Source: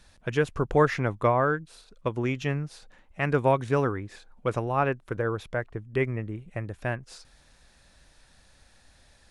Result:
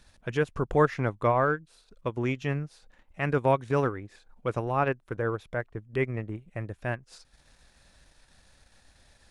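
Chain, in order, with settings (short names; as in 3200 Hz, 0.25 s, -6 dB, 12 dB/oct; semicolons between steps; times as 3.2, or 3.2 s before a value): transient shaper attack -3 dB, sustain -8 dB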